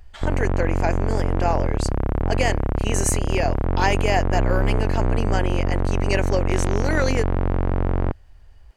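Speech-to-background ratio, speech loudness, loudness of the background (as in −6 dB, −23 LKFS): −2.5 dB, −26.5 LKFS, −24.0 LKFS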